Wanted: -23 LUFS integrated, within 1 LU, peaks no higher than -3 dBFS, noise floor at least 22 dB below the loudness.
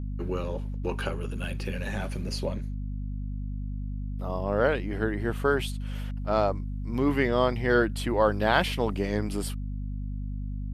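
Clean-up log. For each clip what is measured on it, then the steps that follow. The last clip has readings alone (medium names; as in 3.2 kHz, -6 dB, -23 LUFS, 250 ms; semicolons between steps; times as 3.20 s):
hum 50 Hz; highest harmonic 250 Hz; hum level -30 dBFS; loudness -29.0 LUFS; peak level -7.5 dBFS; loudness target -23.0 LUFS
-> hum notches 50/100/150/200/250 Hz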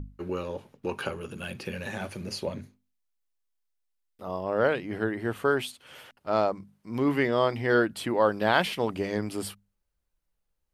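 hum not found; loudness -28.5 LUFS; peak level -7.5 dBFS; loudness target -23.0 LUFS
-> trim +5.5 dB; peak limiter -3 dBFS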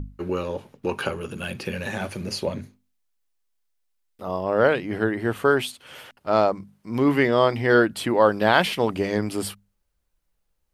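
loudness -23.0 LUFS; peak level -3.0 dBFS; noise floor -73 dBFS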